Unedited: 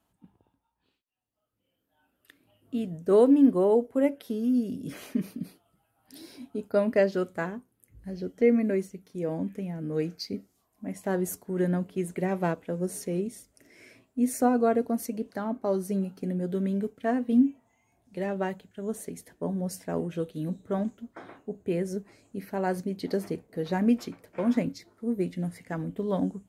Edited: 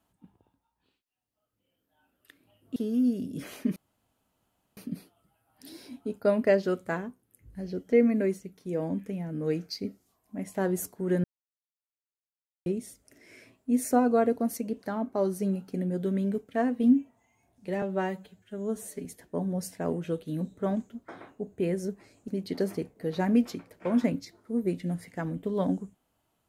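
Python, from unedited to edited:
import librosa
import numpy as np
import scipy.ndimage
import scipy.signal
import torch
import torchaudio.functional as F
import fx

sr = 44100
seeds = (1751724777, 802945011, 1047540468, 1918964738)

y = fx.edit(x, sr, fx.cut(start_s=2.76, length_s=1.5),
    fx.insert_room_tone(at_s=5.26, length_s=1.01),
    fx.silence(start_s=11.73, length_s=1.42),
    fx.stretch_span(start_s=18.31, length_s=0.82, factor=1.5),
    fx.cut(start_s=22.36, length_s=0.45), tone=tone)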